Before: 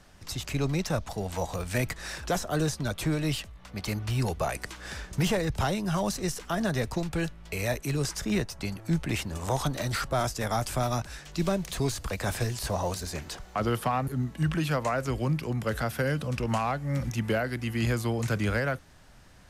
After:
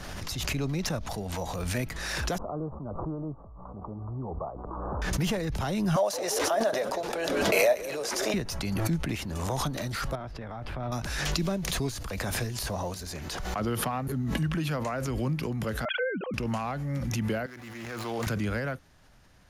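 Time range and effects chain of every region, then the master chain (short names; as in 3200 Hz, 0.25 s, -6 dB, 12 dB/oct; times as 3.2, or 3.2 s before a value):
2.38–5.02 steep low-pass 1200 Hz 72 dB/oct + low shelf 340 Hz -7 dB
5.96–8.34 resonant high-pass 600 Hz, resonance Q 4.3 + frequency-shifting echo 0.169 s, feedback 64%, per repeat -77 Hz, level -16.5 dB
10.15–10.92 compressor 3:1, threshold -30 dBFS + air absorption 420 m
15.85–16.34 sine-wave speech + gate -42 dBFS, range -17 dB
17.46–18.27 median filter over 15 samples + HPF 980 Hz 6 dB/oct + Doppler distortion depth 0.18 ms
whole clip: notch 8000 Hz, Q 7.2; dynamic EQ 230 Hz, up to +4 dB, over -38 dBFS, Q 1.1; backwards sustainer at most 22 dB/s; gain -5 dB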